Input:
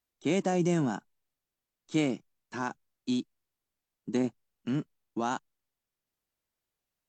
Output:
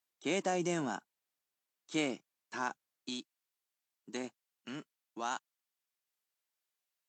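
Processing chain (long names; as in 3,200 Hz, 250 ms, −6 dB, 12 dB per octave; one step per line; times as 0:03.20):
high-pass filter 630 Hz 6 dB per octave, from 0:03.09 1,300 Hz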